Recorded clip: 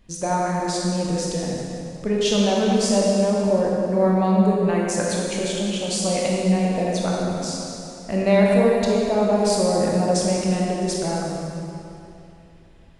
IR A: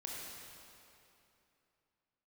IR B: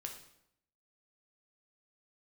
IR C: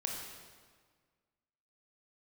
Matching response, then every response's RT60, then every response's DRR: A; 2.9 s, 0.75 s, 1.6 s; -3.5 dB, 2.5 dB, -0.5 dB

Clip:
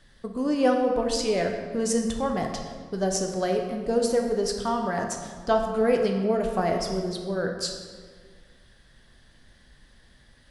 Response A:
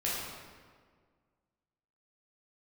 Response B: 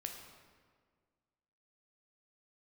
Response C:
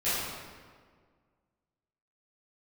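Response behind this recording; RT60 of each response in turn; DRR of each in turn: B; 1.7 s, 1.7 s, 1.7 s; -7.5 dB, 2.5 dB, -15.0 dB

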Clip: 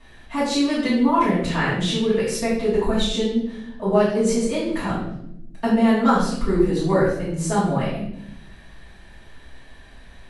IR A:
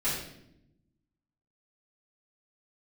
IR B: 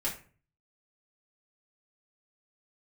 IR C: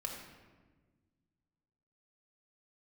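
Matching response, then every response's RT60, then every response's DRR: A; 0.80 s, 0.40 s, 1.4 s; -12.5 dB, -6.5 dB, 0.5 dB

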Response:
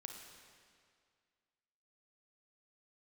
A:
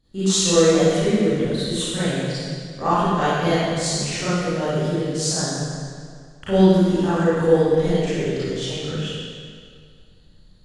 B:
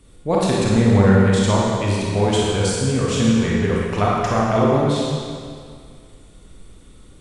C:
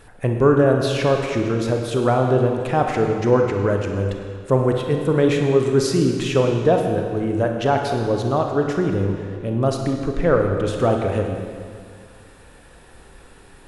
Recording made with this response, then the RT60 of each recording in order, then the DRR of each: C; 2.1 s, 2.1 s, 2.1 s; -14.5 dB, -5.0 dB, 2.5 dB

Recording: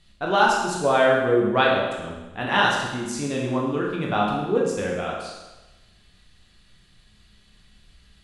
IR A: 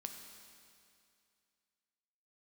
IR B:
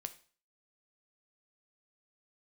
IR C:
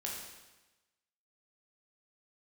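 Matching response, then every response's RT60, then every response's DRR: C; 2.4 s, 0.40 s, 1.1 s; 4.0 dB, 9.0 dB, -3.0 dB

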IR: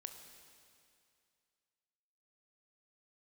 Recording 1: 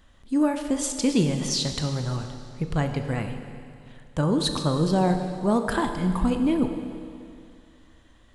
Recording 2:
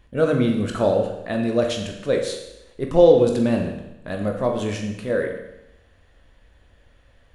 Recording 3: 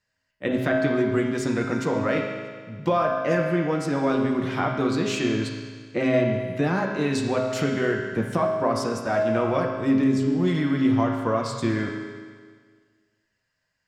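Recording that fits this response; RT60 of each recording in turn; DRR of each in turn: 1; 2.4 s, 0.90 s, 1.7 s; 6.0 dB, 2.0 dB, -1.0 dB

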